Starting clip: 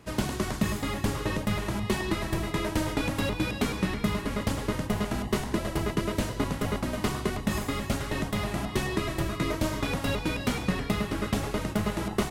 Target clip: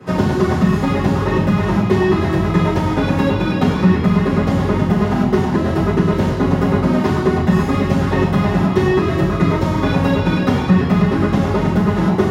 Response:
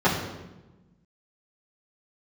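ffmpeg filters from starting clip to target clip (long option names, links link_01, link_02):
-filter_complex "[0:a]acompressor=threshold=-29dB:ratio=6[link_01];[1:a]atrim=start_sample=2205,atrim=end_sample=6615[link_02];[link_01][link_02]afir=irnorm=-1:irlink=0,volume=-3dB"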